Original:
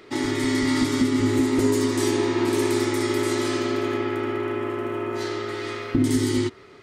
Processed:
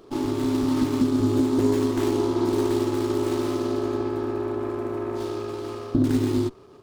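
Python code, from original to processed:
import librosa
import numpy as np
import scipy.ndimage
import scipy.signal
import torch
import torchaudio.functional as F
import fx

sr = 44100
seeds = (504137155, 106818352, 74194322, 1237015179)

y = scipy.signal.sosfilt(scipy.signal.ellip(3, 1.0, 40, [1200.0, 3600.0], 'bandstop', fs=sr, output='sos'), x)
y = fx.running_max(y, sr, window=9)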